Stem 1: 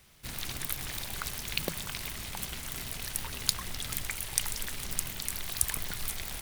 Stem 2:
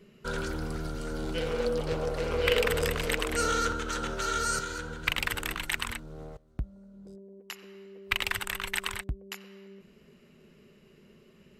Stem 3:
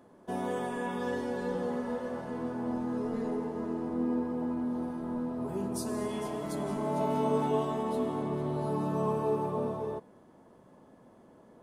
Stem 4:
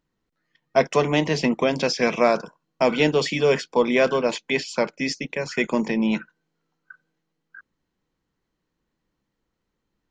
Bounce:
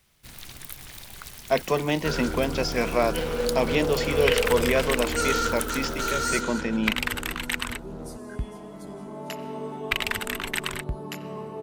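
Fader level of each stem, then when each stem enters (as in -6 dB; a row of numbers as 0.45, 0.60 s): -5.0, +2.5, -6.5, -4.5 dB; 0.00, 1.80, 2.30, 0.75 s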